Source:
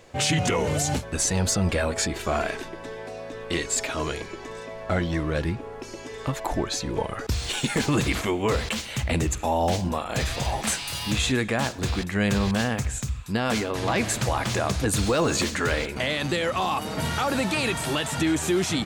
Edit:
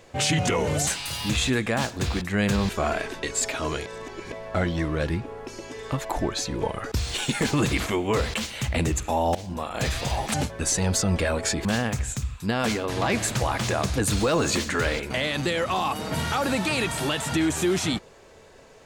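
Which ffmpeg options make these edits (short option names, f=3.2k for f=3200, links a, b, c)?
-filter_complex "[0:a]asplit=9[a][b][c][d][e][f][g][h][i];[a]atrim=end=0.872[j];[b]atrim=start=10.688:end=12.512[k];[c]atrim=start=2.178:end=2.722[l];[d]atrim=start=3.578:end=4.212[m];[e]atrim=start=4.208:end=4.672,asetpts=PTS-STARTPTS,areverse[n];[f]atrim=start=4.668:end=9.7,asetpts=PTS-STARTPTS,afade=t=out:st=5.028:d=0.004:c=hsin:silence=0.149624[o];[g]atrim=start=9.7:end=10.692,asetpts=PTS-STARTPTS,afade=t=in:d=0.41:silence=0.149624[p];[h]atrim=start=0.868:end=2.182[q];[i]atrim=start=12.508[r];[j][k]acrossfade=d=0.004:c1=hsin:c2=hsin[s];[s][l]acrossfade=d=0.004:c1=hsin:c2=hsin[t];[t][m]acrossfade=d=0.004:c1=hsin:c2=hsin[u];[u][n]acrossfade=d=0.004:c1=hsin:c2=hsin[v];[o][p]concat=n=2:v=0:a=1[w];[v][w]acrossfade=d=0.004:c1=hsin:c2=hsin[x];[x][q]acrossfade=d=0.004:c1=hsin:c2=hsin[y];[y][r]acrossfade=d=0.004:c1=hsin:c2=hsin"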